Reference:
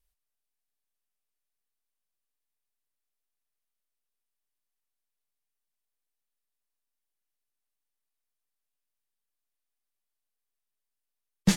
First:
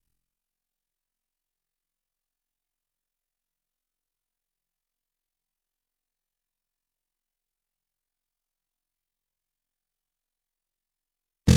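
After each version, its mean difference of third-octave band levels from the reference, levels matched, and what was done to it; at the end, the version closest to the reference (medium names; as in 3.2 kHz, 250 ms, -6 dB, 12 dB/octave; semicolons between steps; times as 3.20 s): 6.5 dB: octave divider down 1 oct, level +4 dB; ring modulator 22 Hz; flutter echo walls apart 4 m, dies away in 0.64 s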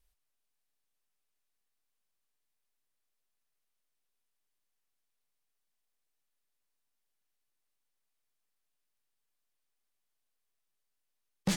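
4.0 dB: treble shelf 9.6 kHz -4.5 dB; saturation -25 dBFS, distortion -6 dB; compression, threshold -30 dBFS, peak gain reduction 4 dB; trim +3.5 dB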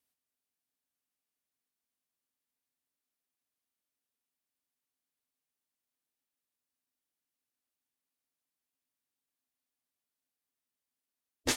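9.0 dB: spectral gate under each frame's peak -15 dB weak; peaking EQ 260 Hz +13 dB 0.29 oct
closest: second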